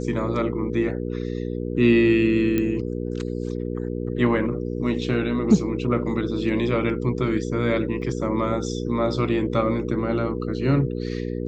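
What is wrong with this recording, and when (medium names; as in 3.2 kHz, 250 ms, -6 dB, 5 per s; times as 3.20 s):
hum 60 Hz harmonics 8 -28 dBFS
2.58 s: pop -11 dBFS
8.02 s: dropout 2.5 ms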